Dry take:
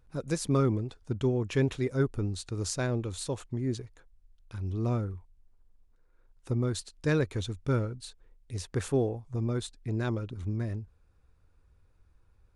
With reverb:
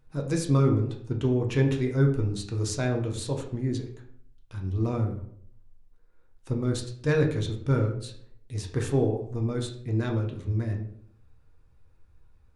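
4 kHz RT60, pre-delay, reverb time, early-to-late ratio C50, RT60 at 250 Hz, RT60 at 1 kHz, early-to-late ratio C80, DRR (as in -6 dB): 0.40 s, 6 ms, 0.60 s, 8.0 dB, 0.70 s, 0.55 s, 11.5 dB, 1.5 dB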